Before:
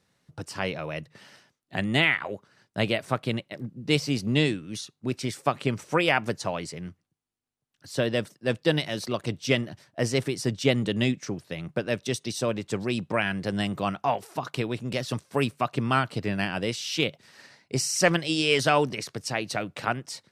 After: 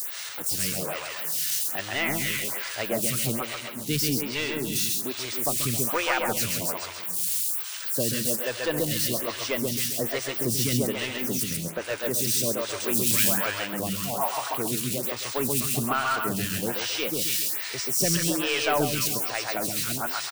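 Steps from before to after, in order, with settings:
spike at every zero crossing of −19 dBFS
0:11.43–0:11.84: bass and treble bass +3 dB, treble −14 dB
echo through a band-pass that steps 145 ms, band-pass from 1,200 Hz, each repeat 1.4 octaves, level −2 dB
soft clipping −15 dBFS, distortion −17 dB
0:12.80–0:13.38: high-shelf EQ 2,900 Hz +11 dB
repeating echo 134 ms, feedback 47%, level −3 dB
phaser with staggered stages 1.2 Hz

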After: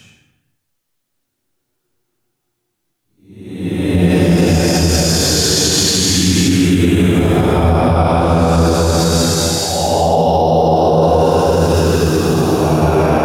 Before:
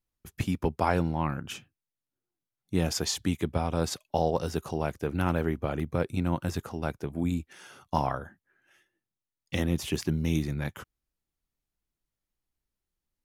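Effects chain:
extreme stretch with random phases 4.3×, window 0.50 s, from 0:01.75
boost into a limiter +22.5 dB
level −2.5 dB

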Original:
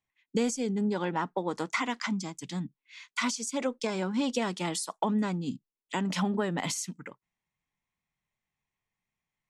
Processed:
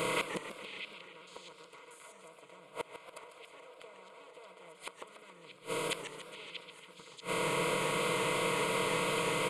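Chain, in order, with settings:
compressor on every frequency bin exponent 0.2
0:02.05–0:04.73: parametric band 710 Hz +12.5 dB 0.74 octaves
comb filter 6.3 ms, depth 81%
dynamic equaliser 1,600 Hz, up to +7 dB, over −33 dBFS, Q 0.79
downward compressor 3 to 1, threshold −21 dBFS, peak gain reduction 10.5 dB
phaser with its sweep stopped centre 1,200 Hz, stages 8
gate with flip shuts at −20 dBFS, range −29 dB
echo through a band-pass that steps 636 ms, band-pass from 3,100 Hz, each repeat 0.7 octaves, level −6 dB
feedback echo with a swinging delay time 141 ms, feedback 62%, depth 204 cents, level −10 dB

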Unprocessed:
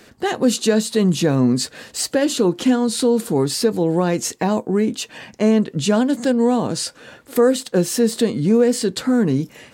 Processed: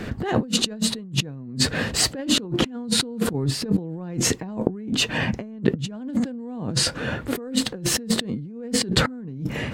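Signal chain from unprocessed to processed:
0:03.33–0:03.78: noise gate −14 dBFS, range −9 dB
bass and treble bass +12 dB, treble −12 dB
compressor whose output falls as the input rises −28 dBFS, ratio −1

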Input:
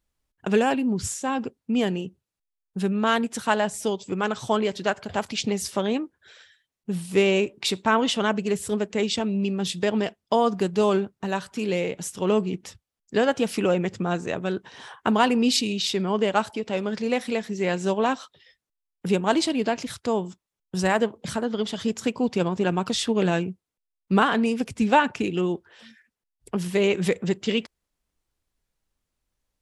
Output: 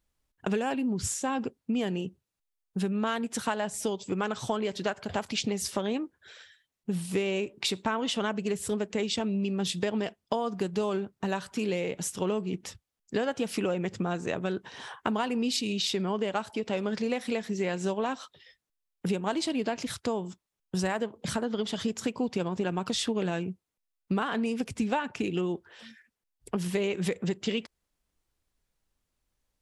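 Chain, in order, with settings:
downward compressor, threshold −26 dBFS, peak gain reduction 12.5 dB

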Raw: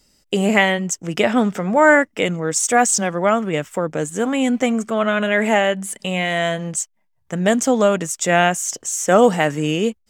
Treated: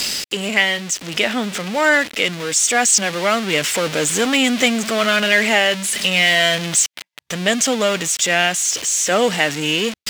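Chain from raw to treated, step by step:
converter with a step at zero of −20.5 dBFS
meter weighting curve D
automatic gain control
level −1 dB

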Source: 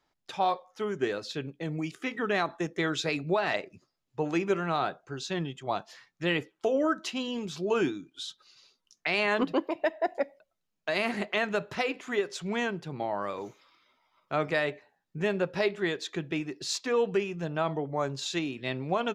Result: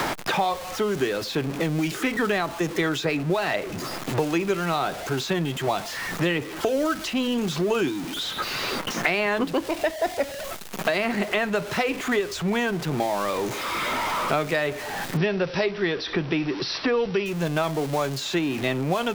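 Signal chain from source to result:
converter with a step at zero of −36 dBFS
0:15.17–0:17.26: linear-phase brick-wall low-pass 5,900 Hz
multiband upward and downward compressor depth 100%
level +3 dB

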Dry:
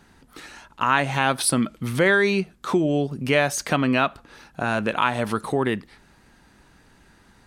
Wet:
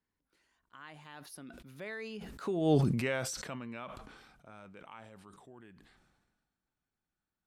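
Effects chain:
source passing by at 0:02.77, 33 m/s, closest 1.9 metres
level that may fall only so fast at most 39 dB per second

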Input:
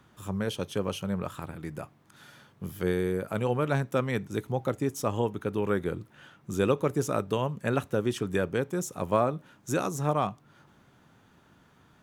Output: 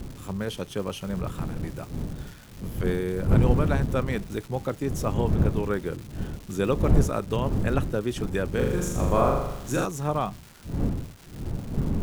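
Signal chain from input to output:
wind on the microphone 160 Hz −28 dBFS
surface crackle 480 per second −37 dBFS
0:08.50–0:09.85: flutter between parallel walls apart 6.9 metres, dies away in 0.86 s

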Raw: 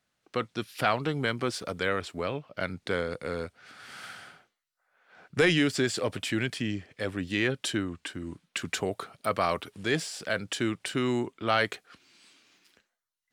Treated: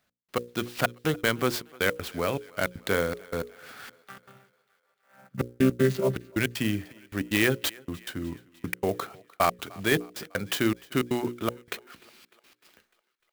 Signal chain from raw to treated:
0:04.07–0:06.16: channel vocoder with a chord as carrier bare fifth, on C3
gate pattern "x..x.xxx" 158 BPM −60 dB
mains-hum notches 60/120/180/240/300/360/420/480/540 Hz
feedback echo with a high-pass in the loop 301 ms, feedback 60%, high-pass 330 Hz, level −23 dB
converter with an unsteady clock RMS 0.027 ms
level +4.5 dB

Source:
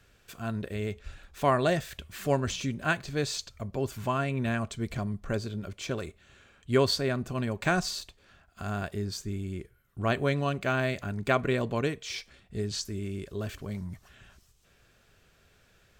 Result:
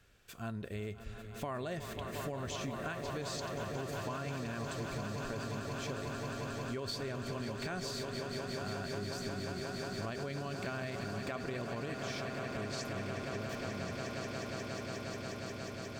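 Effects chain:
on a send: echo that builds up and dies away 179 ms, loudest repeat 8, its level −12.5 dB
on the sum: brickwall limiter −19 dBFS, peak gain reduction 8.5 dB
downward compressor, threshold −31 dBFS, peak gain reduction 7 dB
level −4.5 dB

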